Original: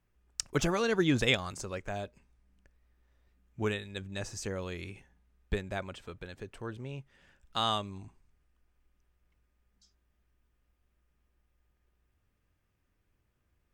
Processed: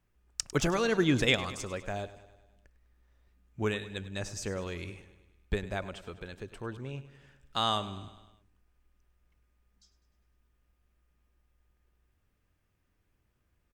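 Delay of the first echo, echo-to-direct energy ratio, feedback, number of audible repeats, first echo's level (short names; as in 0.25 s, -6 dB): 0.101 s, -13.5 dB, 58%, 5, -15.5 dB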